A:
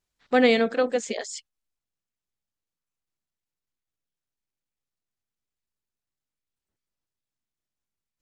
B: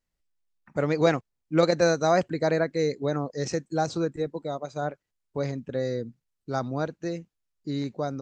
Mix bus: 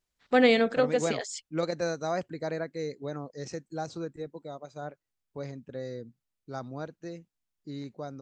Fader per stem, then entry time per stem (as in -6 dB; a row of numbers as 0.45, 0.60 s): -2.0, -9.0 dB; 0.00, 0.00 s